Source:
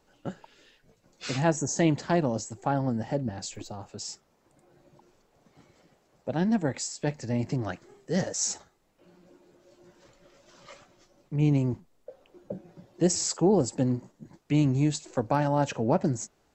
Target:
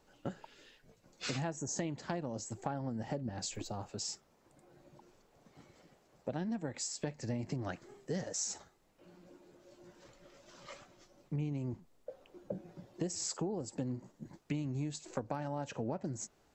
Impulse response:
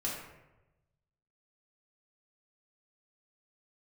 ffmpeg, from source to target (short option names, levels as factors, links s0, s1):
-af "acompressor=threshold=0.0251:ratio=12,volume=0.841"